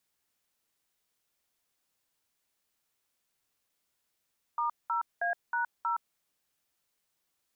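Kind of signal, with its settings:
touch tones "*0A#0", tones 118 ms, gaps 199 ms, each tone −30 dBFS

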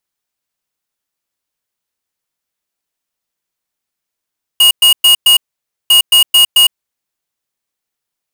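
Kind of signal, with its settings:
beeps in groups square 2,870 Hz, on 0.11 s, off 0.11 s, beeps 4, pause 0.53 s, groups 2, −6.5 dBFS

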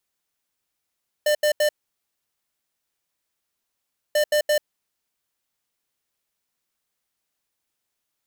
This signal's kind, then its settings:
beeps in groups square 599 Hz, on 0.09 s, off 0.08 s, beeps 3, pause 2.46 s, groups 2, −19 dBFS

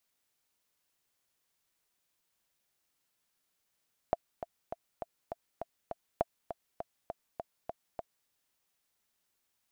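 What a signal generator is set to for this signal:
click track 202 BPM, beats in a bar 7, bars 2, 676 Hz, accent 10.5 dB −14 dBFS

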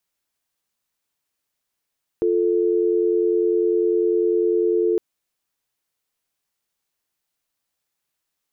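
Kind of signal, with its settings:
call progress tone dial tone, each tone −19 dBFS 2.76 s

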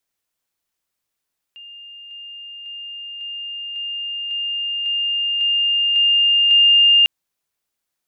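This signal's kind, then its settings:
level staircase 2,810 Hz −36 dBFS, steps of 3 dB, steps 10, 0.55 s 0.00 s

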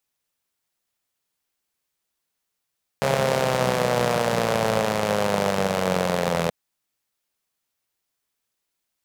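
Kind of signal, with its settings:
pulse-train model of a four-cylinder engine, changing speed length 3.48 s, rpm 4,100, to 2,500, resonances 180/510 Hz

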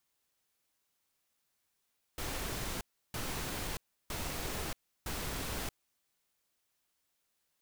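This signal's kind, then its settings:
noise bursts pink, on 0.63 s, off 0.33 s, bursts 4, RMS −38 dBFS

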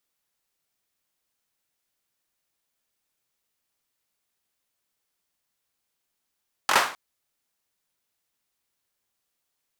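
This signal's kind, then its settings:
synth clap length 0.26 s, apart 22 ms, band 1,100 Hz, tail 0.40 s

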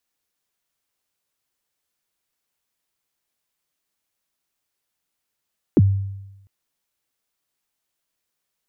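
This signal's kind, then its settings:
synth kick length 0.70 s, from 410 Hz, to 98 Hz, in 36 ms, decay 0.98 s, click off, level −8 dB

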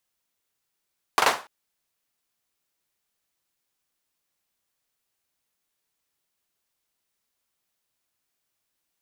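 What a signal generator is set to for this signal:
synth clap length 0.29 s, bursts 3, apart 41 ms, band 930 Hz, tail 0.31 s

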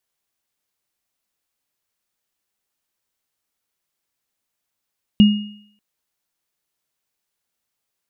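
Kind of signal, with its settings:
inharmonic partials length 0.59 s, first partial 208 Hz, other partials 2,860 Hz, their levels −14 dB, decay 0.59 s, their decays 0.72 s, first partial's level −4.5 dB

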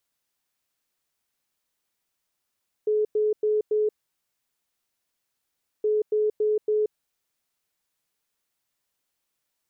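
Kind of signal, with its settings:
beeps in groups sine 426 Hz, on 0.18 s, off 0.10 s, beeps 4, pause 1.95 s, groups 2, −19.5 dBFS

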